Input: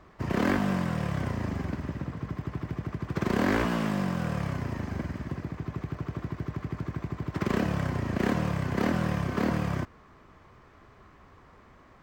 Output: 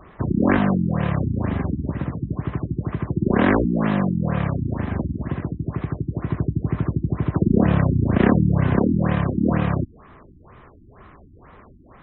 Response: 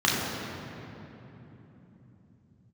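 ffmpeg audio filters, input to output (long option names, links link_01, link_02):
-filter_complex "[0:a]asettb=1/sr,asplit=3[link_01][link_02][link_03];[link_01]atrim=end=6.294[link_04];[link_02]atrim=start=6.29:end=8.79,asetpts=PTS-STARTPTS,afade=type=in:duration=0.004:curve=qsin,afade=type=out:start_time=2.496:duration=0.004:curve=qsin,lowshelf=frequency=450:gain=3.5[link_05];[link_03]atrim=start=8.786[link_06];[link_04][link_05]acrossfade=duration=0.004:curve1=hsin:curve2=qsin[link_07];[link_07][link_06]acrossfade=duration=0.004:curve1=qsin:curve2=hsin,afftfilt=real='re*lt(b*sr/1024,340*pow(4100/340,0.5+0.5*sin(2*PI*2.1*pts/sr)))':imag='im*lt(b*sr/1024,340*pow(4100/340,0.5+0.5*sin(2*PI*2.1*pts/sr)))':win_size=1024:overlap=0.75,volume=8.5dB"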